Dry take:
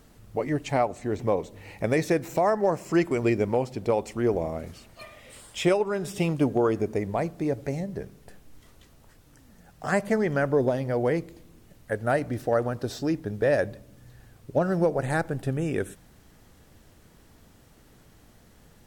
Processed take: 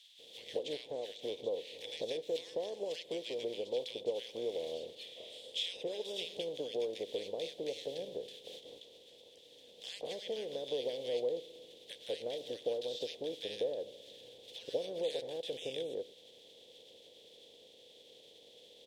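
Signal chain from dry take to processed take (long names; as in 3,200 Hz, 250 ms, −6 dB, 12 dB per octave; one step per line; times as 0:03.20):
compressing power law on the bin magnitudes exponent 0.52
downward compressor 6 to 1, threshold −34 dBFS, peak gain reduction 16.5 dB
pair of resonant band-passes 1,300 Hz, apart 2.8 octaves
multiband delay without the direct sound highs, lows 190 ms, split 1,300 Hz
level +9 dB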